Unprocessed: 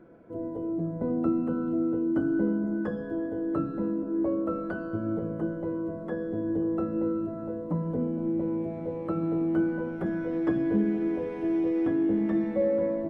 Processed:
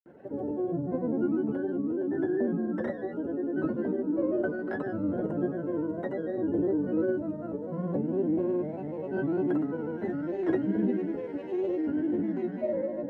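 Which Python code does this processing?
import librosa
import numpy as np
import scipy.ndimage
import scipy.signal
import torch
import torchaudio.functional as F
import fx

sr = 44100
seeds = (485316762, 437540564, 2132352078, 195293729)

y = fx.granulator(x, sr, seeds[0], grain_ms=100.0, per_s=20.0, spray_ms=100.0, spread_st=3)
y = fx.notch_comb(y, sr, f0_hz=1200.0)
y = fx.rider(y, sr, range_db=5, speed_s=2.0)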